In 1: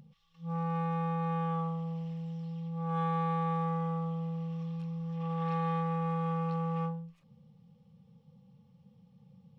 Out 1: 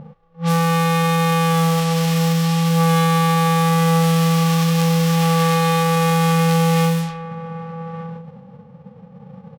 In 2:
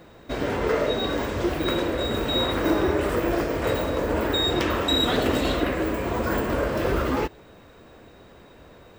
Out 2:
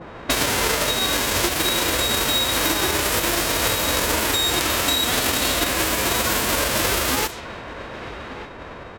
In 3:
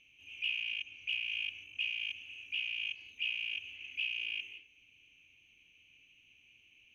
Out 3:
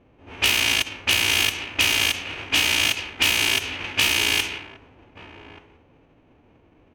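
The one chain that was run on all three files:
formants flattened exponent 0.3; compression 16:1, threshold -33 dBFS; delay 1181 ms -13 dB; level-controlled noise filter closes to 570 Hz, open at -34.5 dBFS; peak normalisation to -6 dBFS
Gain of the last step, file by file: +20.5 dB, +16.0 dB, +18.5 dB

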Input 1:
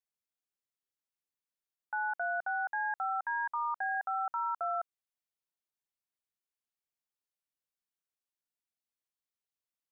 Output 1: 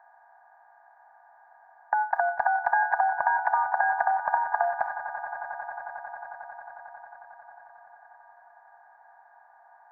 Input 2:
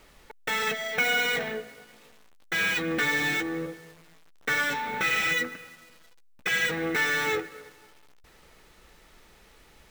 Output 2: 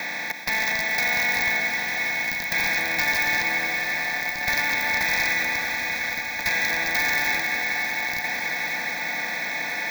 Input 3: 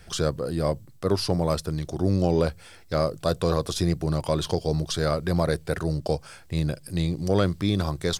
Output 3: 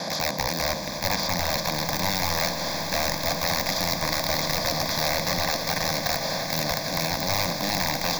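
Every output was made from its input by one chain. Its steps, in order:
spectral levelling over time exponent 0.2; high-pass 190 Hz 24 dB/octave; gate with hold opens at -25 dBFS; integer overflow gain 10 dB; static phaser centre 2 kHz, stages 8; echo with a slow build-up 90 ms, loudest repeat 8, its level -16.5 dB; peak normalisation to -9 dBFS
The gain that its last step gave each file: +11.0 dB, -2.5 dB, -4.0 dB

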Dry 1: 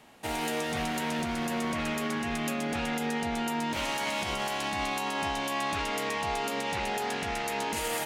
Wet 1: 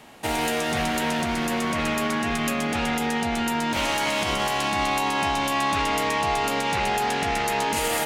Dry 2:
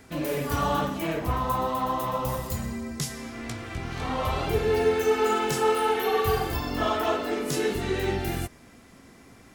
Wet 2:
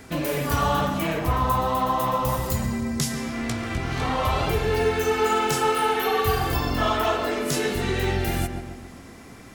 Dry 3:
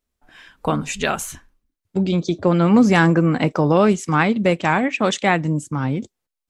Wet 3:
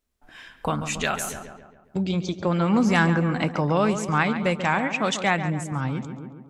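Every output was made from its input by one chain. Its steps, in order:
filtered feedback delay 138 ms, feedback 52%, low-pass 2.6 kHz, level -10 dB; in parallel at -3 dB: compression, threshold -30 dBFS; on the sum: dynamic bell 340 Hz, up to -6 dB, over -29 dBFS, Q 0.86; normalise loudness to -24 LUFS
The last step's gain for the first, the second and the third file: +3.0 dB, +2.0 dB, -4.0 dB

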